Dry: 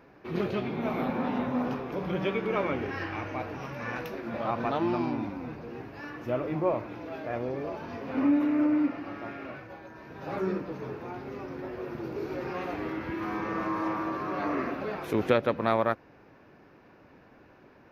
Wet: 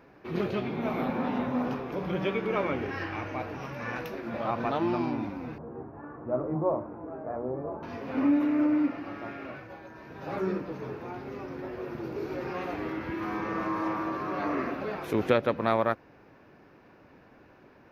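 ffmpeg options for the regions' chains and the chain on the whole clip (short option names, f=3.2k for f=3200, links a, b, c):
-filter_complex "[0:a]asettb=1/sr,asplit=3[a][b][c];[a]atrim=end=5.584[d];[b]atrim=start=5.58:end=7.83,asetpts=PTS-STARTPTS,afade=t=in:d=0.004:c=qsin,afade=t=out:st=2.246:d=0.004:c=qsin,lowpass=f=1.2k:w=0.5412,lowpass=f=1.2k:w=1.3066,bandreject=f=60:t=h:w=6,bandreject=f=120:t=h:w=6,bandreject=f=180:t=h:w=6,bandreject=f=240:t=h:w=6,bandreject=f=300:t=h:w=6,bandreject=f=360:t=h:w=6,bandreject=f=420:t=h:w=6,bandreject=f=480:t=h:w=6,bandreject=f=540:t=h:w=6,bandreject=f=600:t=h:w=6,asplit=2[e][f];[f]adelay=13,volume=-11.5dB[g];[e][g]amix=inputs=2:normalize=0,atrim=end_sample=99225[h];[c]atrim=start=7.826[i];[d][h]acrossfade=d=0.004:c1=hsin:c2=qsin[j];[j][i]acrossfade=d=0.004:c1=qsin:c2=hsin"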